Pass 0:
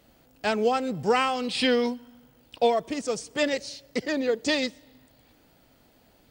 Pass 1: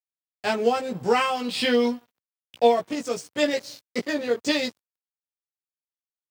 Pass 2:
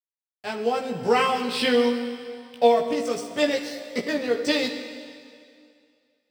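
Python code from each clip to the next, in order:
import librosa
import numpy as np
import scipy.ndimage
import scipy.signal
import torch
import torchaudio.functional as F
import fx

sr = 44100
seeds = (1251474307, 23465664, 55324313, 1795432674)

y1 = fx.doubler(x, sr, ms=17.0, db=-2.5)
y1 = np.sign(y1) * np.maximum(np.abs(y1) - 10.0 ** (-42.5 / 20.0), 0.0)
y1 = scipy.signal.sosfilt(scipy.signal.butter(4, 88.0, 'highpass', fs=sr, output='sos'), y1)
y2 = fx.fade_in_head(y1, sr, length_s=1.01)
y2 = fx.notch(y2, sr, hz=6800.0, q=8.2)
y2 = fx.rev_plate(y2, sr, seeds[0], rt60_s=2.3, hf_ratio=0.95, predelay_ms=0, drr_db=6.5)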